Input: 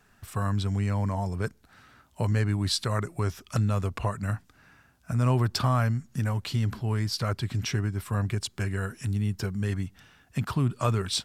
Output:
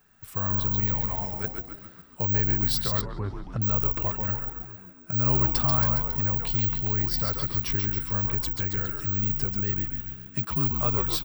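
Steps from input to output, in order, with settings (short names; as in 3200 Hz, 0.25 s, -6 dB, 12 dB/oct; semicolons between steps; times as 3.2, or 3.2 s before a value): one-sided fold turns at -19 dBFS; 0.94–1.44 tilt shelf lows -6 dB; frequency-shifting echo 0.137 s, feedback 57%, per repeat -72 Hz, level -4.5 dB; careless resampling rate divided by 2×, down none, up zero stuff; 3.01–3.62 tape spacing loss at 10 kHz 30 dB; gain -3.5 dB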